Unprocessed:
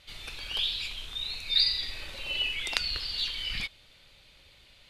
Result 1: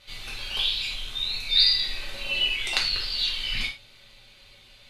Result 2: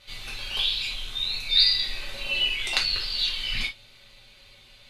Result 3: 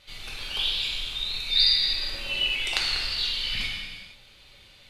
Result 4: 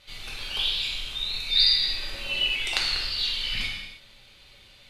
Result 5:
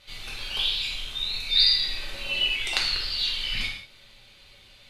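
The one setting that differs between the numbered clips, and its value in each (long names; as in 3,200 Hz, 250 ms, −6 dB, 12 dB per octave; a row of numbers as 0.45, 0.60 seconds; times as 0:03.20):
reverb whose tail is shaped and stops, gate: 130, 90, 520, 350, 220 milliseconds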